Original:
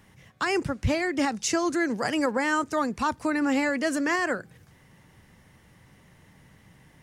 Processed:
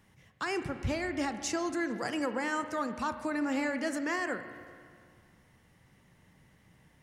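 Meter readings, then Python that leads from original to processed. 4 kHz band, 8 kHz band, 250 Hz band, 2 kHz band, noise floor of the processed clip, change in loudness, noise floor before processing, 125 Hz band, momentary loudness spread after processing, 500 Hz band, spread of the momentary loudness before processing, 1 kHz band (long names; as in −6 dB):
−7.5 dB, −7.5 dB, −7.0 dB, −7.0 dB, −64 dBFS, −7.0 dB, −58 dBFS, −7.0 dB, 6 LU, −7.0 dB, 3 LU, −7.0 dB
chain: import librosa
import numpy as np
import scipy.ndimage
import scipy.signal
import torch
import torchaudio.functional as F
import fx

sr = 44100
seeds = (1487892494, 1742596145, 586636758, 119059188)

y = fx.rev_spring(x, sr, rt60_s=2.1, pass_ms=(34, 47), chirp_ms=20, drr_db=9.0)
y = F.gain(torch.from_numpy(y), -7.5).numpy()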